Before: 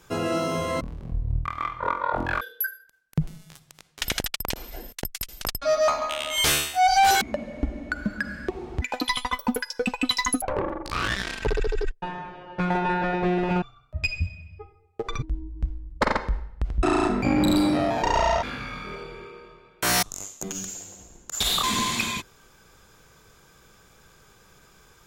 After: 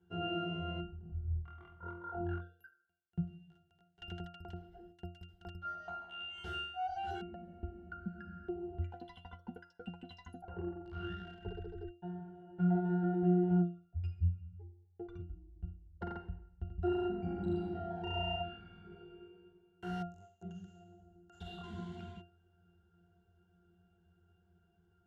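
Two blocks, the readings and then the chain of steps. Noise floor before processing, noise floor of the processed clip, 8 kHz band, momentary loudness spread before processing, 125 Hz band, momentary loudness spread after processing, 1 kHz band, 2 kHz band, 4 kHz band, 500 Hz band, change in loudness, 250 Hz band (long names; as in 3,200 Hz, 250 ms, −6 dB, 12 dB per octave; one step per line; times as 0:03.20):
−57 dBFS, −72 dBFS, below −40 dB, 14 LU, −6.5 dB, 19 LU, −19.0 dB, −20.5 dB, below −20 dB, −14.0 dB, −13.5 dB, −10.0 dB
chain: resonances in every octave F, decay 0.35 s
level +1.5 dB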